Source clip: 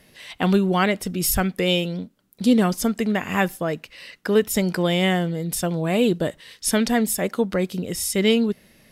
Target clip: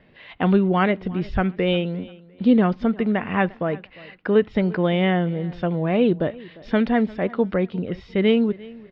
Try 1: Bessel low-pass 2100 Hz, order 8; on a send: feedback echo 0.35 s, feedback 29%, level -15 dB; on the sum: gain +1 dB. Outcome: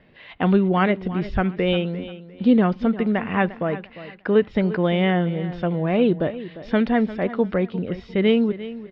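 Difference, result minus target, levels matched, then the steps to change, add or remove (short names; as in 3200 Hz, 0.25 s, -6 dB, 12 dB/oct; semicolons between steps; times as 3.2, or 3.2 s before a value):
echo-to-direct +6.5 dB
change: feedback echo 0.35 s, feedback 29%, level -21.5 dB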